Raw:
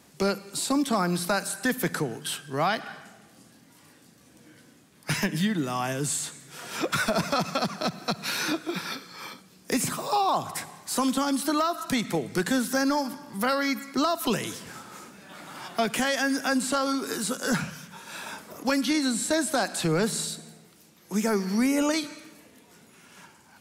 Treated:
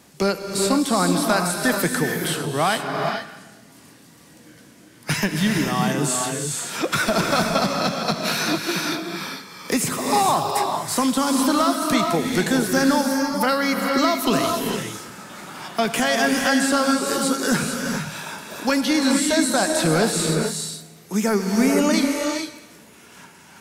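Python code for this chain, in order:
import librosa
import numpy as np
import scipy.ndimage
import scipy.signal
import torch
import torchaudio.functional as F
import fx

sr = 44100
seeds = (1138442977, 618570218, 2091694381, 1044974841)

y = fx.rev_gated(x, sr, seeds[0], gate_ms=480, shape='rising', drr_db=2.0)
y = y * librosa.db_to_amplitude(4.5)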